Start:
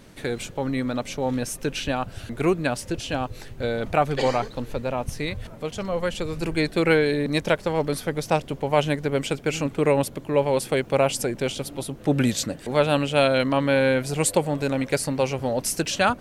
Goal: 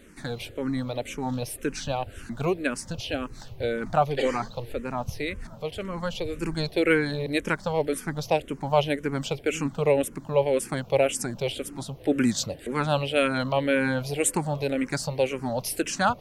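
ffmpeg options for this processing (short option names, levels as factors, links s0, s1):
-filter_complex "[0:a]asplit=2[s0][s1];[s1]afreqshift=-1.9[s2];[s0][s2]amix=inputs=2:normalize=1"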